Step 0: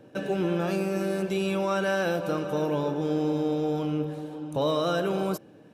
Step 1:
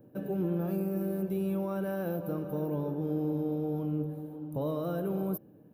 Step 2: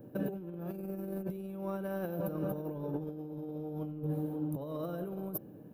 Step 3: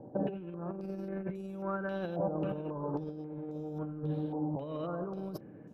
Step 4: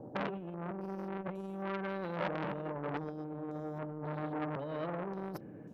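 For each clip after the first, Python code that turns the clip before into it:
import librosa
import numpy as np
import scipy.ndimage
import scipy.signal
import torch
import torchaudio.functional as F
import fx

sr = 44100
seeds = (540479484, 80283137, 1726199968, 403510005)

y1 = fx.curve_eq(x, sr, hz=(190.0, 1100.0, 2500.0, 7400.0, 14000.0), db=(0, -11, -19, -23, 11))
y1 = F.gain(torch.from_numpy(y1), -1.5).numpy()
y2 = fx.over_compress(y1, sr, threshold_db=-36.0, ratio=-0.5)
y3 = fx.filter_held_lowpass(y2, sr, hz=3.7, low_hz=820.0, high_hz=6700.0)
y4 = fx.transformer_sat(y3, sr, knee_hz=1600.0)
y4 = F.gain(torch.from_numpy(y4), 2.0).numpy()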